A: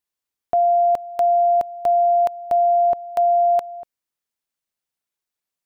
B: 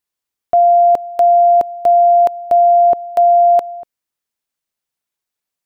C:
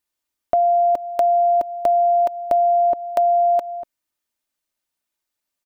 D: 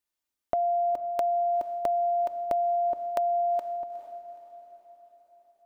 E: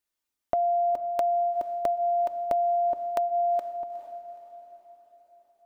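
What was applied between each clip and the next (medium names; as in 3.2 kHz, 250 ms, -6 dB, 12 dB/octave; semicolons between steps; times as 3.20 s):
dynamic bell 370 Hz, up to +8 dB, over -35 dBFS, Q 0.79; trim +3 dB
comb 3.3 ms, depth 42%; compression 3:1, threshold -17 dBFS, peak gain reduction 6.5 dB
echo that smears into a reverb 450 ms, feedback 51%, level -15 dB; compression 4:1, threshold -19 dBFS, peak gain reduction 5 dB; trim -5.5 dB
flange 0.57 Hz, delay 0.4 ms, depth 1.2 ms, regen -83%; trim +5.5 dB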